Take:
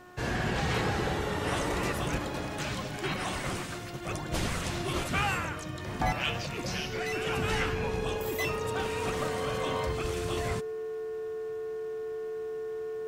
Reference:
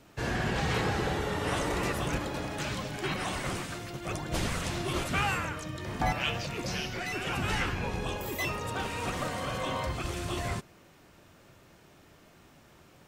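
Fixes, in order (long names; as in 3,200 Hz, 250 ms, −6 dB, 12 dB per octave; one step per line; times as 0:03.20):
clipped peaks rebuilt −18.5 dBFS
hum removal 360.8 Hz, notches 5
notch filter 440 Hz, Q 30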